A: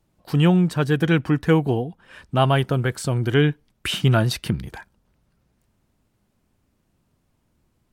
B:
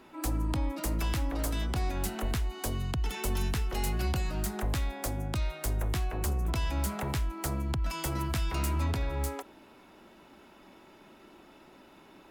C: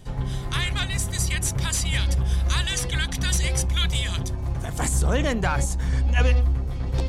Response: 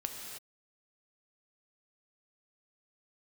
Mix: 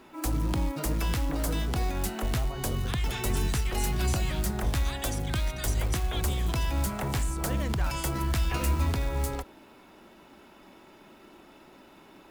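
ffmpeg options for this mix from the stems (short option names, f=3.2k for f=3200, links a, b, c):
-filter_complex "[0:a]acompressor=threshold=-26dB:ratio=6,lowpass=1.3k,volume=-10.5dB[a];[1:a]acrusher=bits=5:mode=log:mix=0:aa=0.000001,volume=2dB[b];[2:a]adelay=2350,volume=-13dB[c];[a][b][c]amix=inputs=3:normalize=0"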